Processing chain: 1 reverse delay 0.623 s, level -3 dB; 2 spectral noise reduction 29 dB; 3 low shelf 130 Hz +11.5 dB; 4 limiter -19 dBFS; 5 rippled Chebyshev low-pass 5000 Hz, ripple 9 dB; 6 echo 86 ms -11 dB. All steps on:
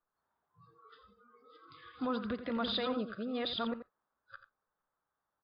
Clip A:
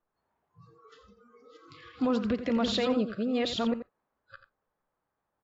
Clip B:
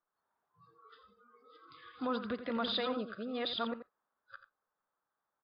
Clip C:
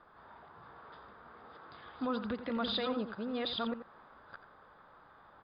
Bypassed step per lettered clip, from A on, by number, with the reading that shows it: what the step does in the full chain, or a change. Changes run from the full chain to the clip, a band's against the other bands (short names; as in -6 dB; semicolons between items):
5, 4 kHz band -4.5 dB; 3, 125 Hz band -3.5 dB; 2, momentary loudness spread change +10 LU